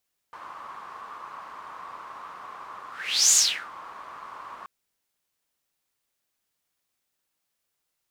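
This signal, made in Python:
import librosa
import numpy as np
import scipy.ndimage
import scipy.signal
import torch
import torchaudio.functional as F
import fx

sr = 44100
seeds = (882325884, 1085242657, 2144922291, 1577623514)

y = fx.whoosh(sr, seeds[0], length_s=4.33, peak_s=3.01, rise_s=0.48, fall_s=0.37, ends_hz=1100.0, peak_hz=7000.0, q=6.7, swell_db=24)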